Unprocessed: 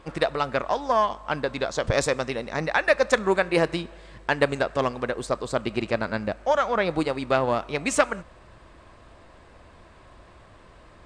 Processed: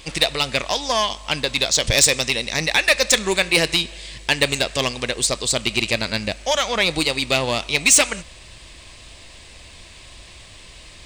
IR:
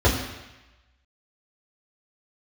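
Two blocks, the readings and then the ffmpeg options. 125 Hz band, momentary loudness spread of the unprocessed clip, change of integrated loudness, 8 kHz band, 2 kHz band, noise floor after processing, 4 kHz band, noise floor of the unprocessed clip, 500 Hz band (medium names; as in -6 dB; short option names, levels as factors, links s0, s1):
+3.5 dB, 7 LU, +6.5 dB, +18.5 dB, +7.0 dB, -43 dBFS, +16.5 dB, -51 dBFS, -0.5 dB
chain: -af "lowshelf=f=110:g=8.5,aexciter=amount=8.4:drive=4.8:freq=2100,acontrast=64,volume=0.501"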